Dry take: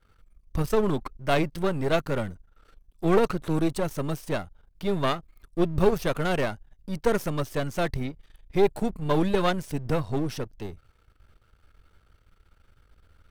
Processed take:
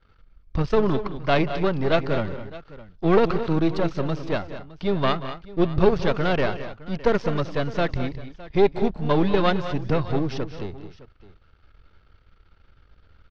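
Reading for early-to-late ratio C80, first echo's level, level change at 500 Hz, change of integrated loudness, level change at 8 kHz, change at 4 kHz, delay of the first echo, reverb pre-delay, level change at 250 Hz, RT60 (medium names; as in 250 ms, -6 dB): no reverb, -15.5 dB, +3.5 dB, +3.5 dB, no reading, +3.5 dB, 183 ms, no reverb, +3.5 dB, no reverb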